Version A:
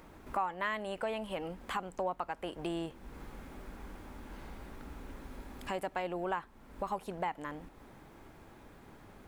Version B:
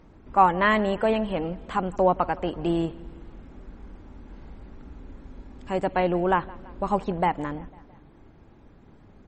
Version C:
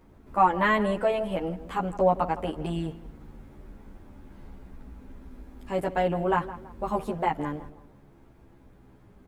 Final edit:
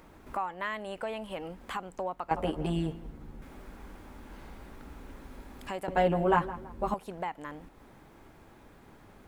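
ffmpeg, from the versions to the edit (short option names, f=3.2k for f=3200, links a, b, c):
-filter_complex "[2:a]asplit=2[a][b];[0:a]asplit=3[c][d][e];[c]atrim=end=2.312[f];[a]atrim=start=2.308:end=3.422[g];[d]atrim=start=3.418:end=5.882[h];[b]atrim=start=5.878:end=6.942[i];[e]atrim=start=6.938[j];[f][g]acrossfade=d=0.004:c1=hsin:c2=hsin[k];[k][h]acrossfade=d=0.004:c1=hsin:c2=hsin[l];[l][i]acrossfade=d=0.004:c1=hsin:c2=hsin[m];[m][j]acrossfade=d=0.004:c1=hsin:c2=hsin"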